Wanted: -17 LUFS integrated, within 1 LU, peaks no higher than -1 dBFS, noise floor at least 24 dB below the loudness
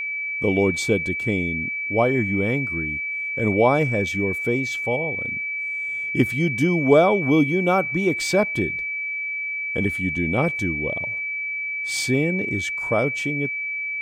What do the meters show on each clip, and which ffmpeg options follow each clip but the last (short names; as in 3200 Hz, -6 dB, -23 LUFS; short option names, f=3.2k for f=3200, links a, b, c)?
steady tone 2300 Hz; tone level -25 dBFS; loudness -22.0 LUFS; peak -4.5 dBFS; loudness target -17.0 LUFS
-> -af "bandreject=f=2.3k:w=30"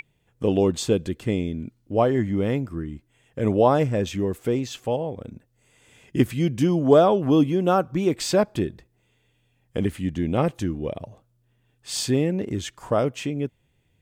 steady tone none; loudness -23.5 LUFS; peak -5.0 dBFS; loudness target -17.0 LUFS
-> -af "volume=6.5dB,alimiter=limit=-1dB:level=0:latency=1"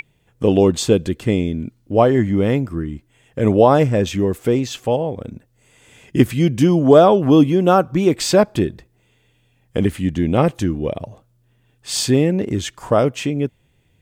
loudness -17.0 LUFS; peak -1.0 dBFS; noise floor -61 dBFS